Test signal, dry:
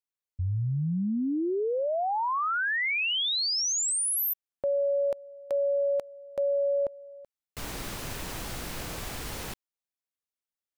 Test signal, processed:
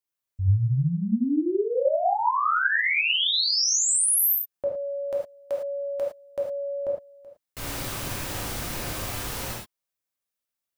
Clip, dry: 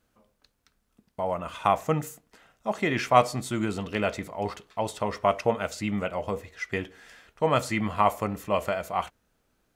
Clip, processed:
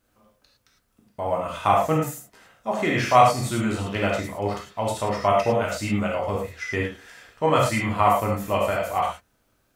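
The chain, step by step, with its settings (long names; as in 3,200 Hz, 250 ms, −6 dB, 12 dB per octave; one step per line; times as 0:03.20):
high-shelf EQ 12,000 Hz +4.5 dB
reverb whose tail is shaped and stops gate 130 ms flat, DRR −2.5 dB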